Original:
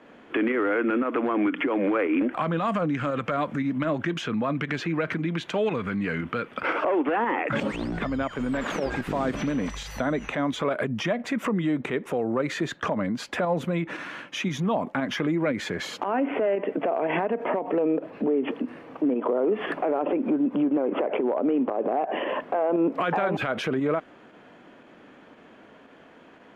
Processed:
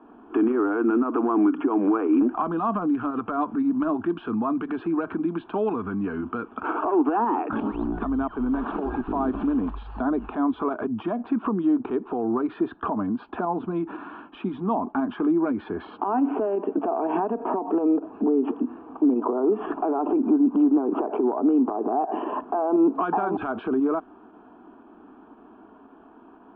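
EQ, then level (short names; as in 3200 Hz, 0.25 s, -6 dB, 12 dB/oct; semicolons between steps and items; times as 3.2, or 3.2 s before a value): Gaussian blur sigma 4.1 samples; fixed phaser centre 540 Hz, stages 6; +5.0 dB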